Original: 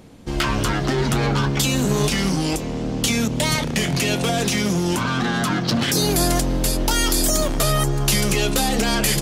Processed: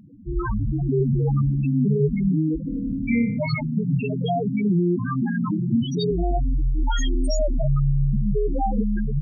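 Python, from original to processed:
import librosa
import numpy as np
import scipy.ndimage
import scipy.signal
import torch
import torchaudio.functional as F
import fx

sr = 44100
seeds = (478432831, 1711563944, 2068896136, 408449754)

y = fx.spec_topn(x, sr, count=4)
y = fx.room_flutter(y, sr, wall_m=5.0, rt60_s=0.64, at=(2.66, 3.37), fade=0.02)
y = y * 10.0 ** (2.5 / 20.0)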